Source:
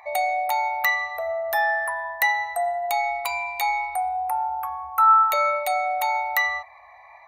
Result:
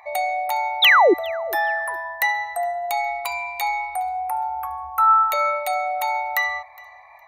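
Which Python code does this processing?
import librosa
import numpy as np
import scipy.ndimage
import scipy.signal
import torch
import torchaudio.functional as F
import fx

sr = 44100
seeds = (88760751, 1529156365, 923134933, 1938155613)

p1 = fx.spec_paint(x, sr, seeds[0], shape='fall', start_s=0.82, length_s=0.32, low_hz=310.0, high_hz=4000.0, level_db=-13.0)
p2 = fx.low_shelf(p1, sr, hz=66.0, db=12.0, at=(4.56, 5.33))
y = p2 + fx.echo_feedback(p2, sr, ms=413, feedback_pct=24, wet_db=-23.0, dry=0)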